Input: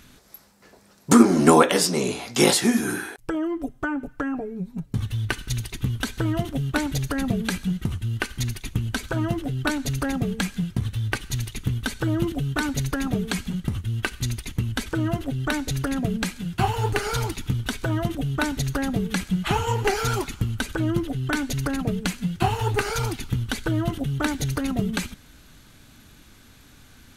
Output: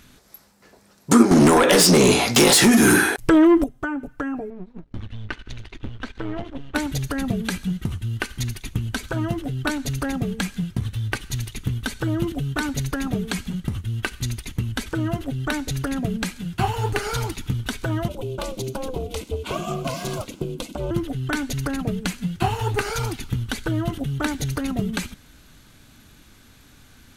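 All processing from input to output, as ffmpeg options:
-filter_complex "[0:a]asettb=1/sr,asplit=3[s0][s1][s2];[s0]atrim=end=1.314[s3];[s1]atrim=start=1.31:end=3.64,asetpts=PTS-STARTPTS,afade=t=in:d=0.004:c=qsin,afade=t=out:st=2.326:d=0.004:c=qsin,acompressor=threshold=0.0891:ratio=12:attack=3.2:release=140:knee=1:detection=peak,aeval=exprs='0.335*sin(PI/2*3.55*val(0)/0.335)':c=same[s4];[s2]atrim=start=3.636[s5];[s3][s4]acrossfade=d=0.004:c1=hsin:c2=qsin[s6];[s6][s5]acrossfade=d=0.004:c1=qsin:c2=hsin,asettb=1/sr,asplit=3[s7][s8][s9];[s7]atrim=end=4.504[s10];[s8]atrim=start=4.5:end=6.75,asetpts=PTS-STARTPTS,afade=t=in:d=0.004:c=qsin,afade=t=out:st=2.246:d=0.004:c=qsin,aeval=exprs='if(lt(val(0),0),0.251*val(0),val(0))':c=same,lowpass=3200,equalizer=f=140:w=3.1:g=-14.5[s11];[s9]atrim=start=6.746[s12];[s10][s11]acrossfade=d=0.004:c1=hsin:c2=qsin[s13];[s13][s12]acrossfade=d=0.004:c1=qsin:c2=hsin,asettb=1/sr,asplit=3[s14][s15][s16];[s14]atrim=end=18.084[s17];[s15]atrim=start=18.08:end=20.91,asetpts=PTS-STARTPTS,afade=t=in:d=0.004:c=qsin,afade=t=out:st=2.826:d=0.004:c=qsin,aeval=exprs='clip(val(0),-1,0.0944)':c=same,asuperstop=centerf=1700:order=8:qfactor=1.8,aeval=exprs='val(0)*sin(2*PI*260*n/s)':c=same[s18];[s16]atrim=start=20.906[s19];[s17][s18]acrossfade=d=0.004:c1=hsin:c2=qsin[s20];[s20][s19]acrossfade=d=0.004:c1=qsin:c2=hsin"

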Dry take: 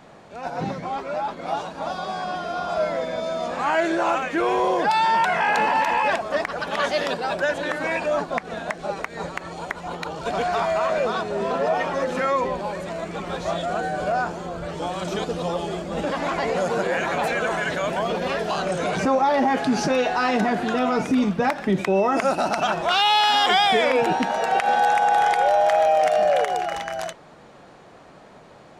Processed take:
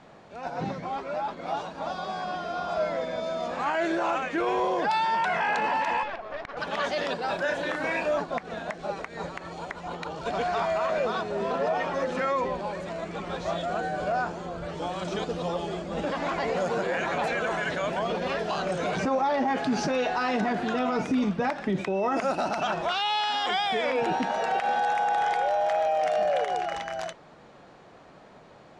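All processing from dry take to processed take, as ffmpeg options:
-filter_complex "[0:a]asettb=1/sr,asplit=3[s0][s1][s2];[s0]atrim=end=6.034[s3];[s1]atrim=start=6.03:end=6.57,asetpts=PTS-STARTPTS,afade=t=in:d=0.004:c=qsin,afade=t=out:st=0.536:d=0.004:c=qsin,highpass=300,lowpass=3300,acompressor=threshold=0.0501:ratio=2:attack=3.2:release=140:knee=1:detection=peak,aeval=exprs='(tanh(11.2*val(0)+0.75)-tanh(0.75))/11.2':c=same[s4];[s2]atrim=start=6.566[s5];[s3][s4]acrossfade=d=0.004:c1=hsin:c2=qsin[s6];[s6][s5]acrossfade=d=0.004:c1=qsin:c2=hsin,asettb=1/sr,asplit=3[s7][s8][s9];[s7]atrim=end=7.254[s10];[s8]atrim=start=7.25:end=8.18,asetpts=PTS-STARTPTS,afade=t=in:d=0.004:c=qsin,afade=t=out:st=0.926:d=0.004:c=qsin,acrusher=bits=9:dc=4:mix=0:aa=0.000001,asplit=2[s11][s12];[s12]adelay=33,volume=0.562[s13];[s11][s13]amix=inputs=2:normalize=0,atrim=end_sample=41013[s14];[s9]atrim=start=8.176[s15];[s10][s14]acrossfade=d=0.004:c1=hsin:c2=qsin[s16];[s16][s15]acrossfade=d=0.004:c1=qsin:c2=hsin,lowpass=7000,alimiter=limit=0.188:level=0:latency=1:release=11,volume=0.631"

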